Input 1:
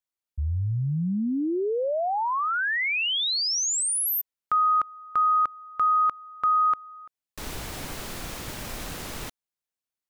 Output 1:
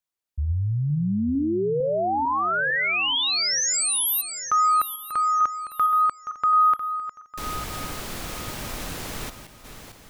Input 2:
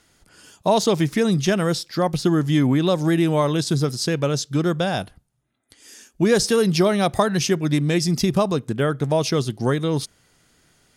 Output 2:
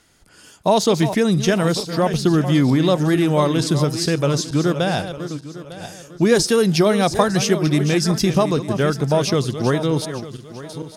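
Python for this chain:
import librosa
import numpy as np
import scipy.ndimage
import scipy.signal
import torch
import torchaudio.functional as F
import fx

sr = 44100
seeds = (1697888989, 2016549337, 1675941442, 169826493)

y = fx.reverse_delay_fb(x, sr, ms=451, feedback_pct=51, wet_db=-10.5)
y = y * 10.0 ** (2.0 / 20.0)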